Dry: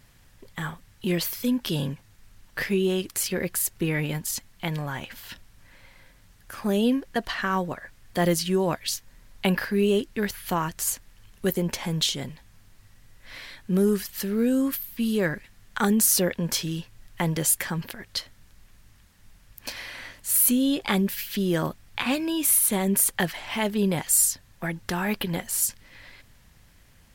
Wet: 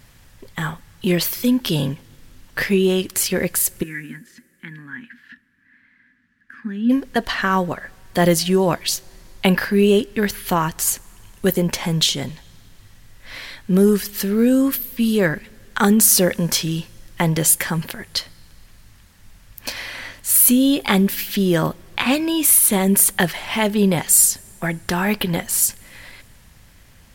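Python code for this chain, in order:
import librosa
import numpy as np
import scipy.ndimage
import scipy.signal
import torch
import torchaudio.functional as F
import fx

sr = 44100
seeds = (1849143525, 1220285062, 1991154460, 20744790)

y = fx.double_bandpass(x, sr, hz=650.0, octaves=2.8, at=(3.82, 6.89), fade=0.02)
y = fx.rev_double_slope(y, sr, seeds[0], early_s=0.22, late_s=2.7, knee_db=-18, drr_db=20.0)
y = y * 10.0 ** (7.0 / 20.0)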